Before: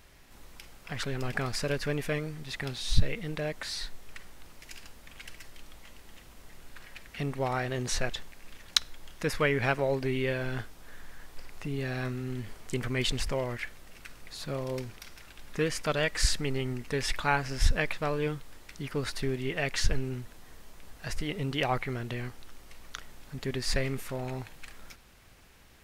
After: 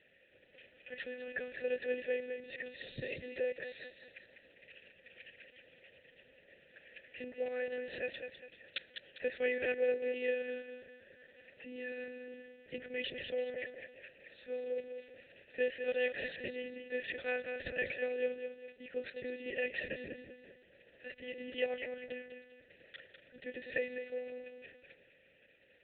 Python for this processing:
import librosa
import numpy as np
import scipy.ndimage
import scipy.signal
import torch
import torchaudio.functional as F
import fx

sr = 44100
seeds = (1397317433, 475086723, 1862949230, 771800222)

p1 = scipy.signal.sosfilt(scipy.signal.butter(2, 43.0, 'highpass', fs=sr, output='sos'), x)
p2 = fx.peak_eq(p1, sr, hz=760.0, db=-7.5, octaves=2.6)
p3 = p2 + fx.echo_feedback(p2, sr, ms=202, feedback_pct=39, wet_db=-7.5, dry=0)
p4 = fx.lpc_monotone(p3, sr, seeds[0], pitch_hz=250.0, order=8)
p5 = fx.vowel_filter(p4, sr, vowel='e')
p6 = fx.low_shelf(p5, sr, hz=210.0, db=3.5)
y = p6 * librosa.db_to_amplitude(8.0)